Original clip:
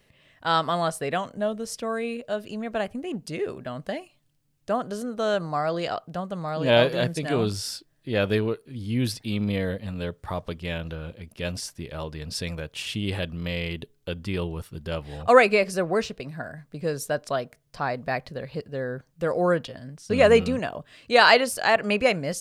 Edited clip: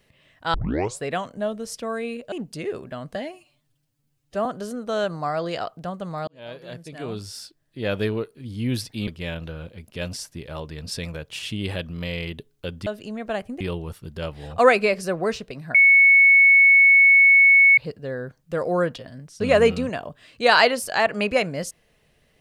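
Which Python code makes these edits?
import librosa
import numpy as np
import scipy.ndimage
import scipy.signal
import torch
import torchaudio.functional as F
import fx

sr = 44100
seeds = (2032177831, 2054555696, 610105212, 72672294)

y = fx.edit(x, sr, fx.tape_start(start_s=0.54, length_s=0.48),
    fx.move(start_s=2.32, length_s=0.74, to_s=14.3),
    fx.stretch_span(start_s=3.89, length_s=0.87, factor=1.5),
    fx.fade_in_span(start_s=6.58, length_s=2.0),
    fx.cut(start_s=9.38, length_s=1.13),
    fx.bleep(start_s=16.44, length_s=2.03, hz=2210.0, db=-10.0), tone=tone)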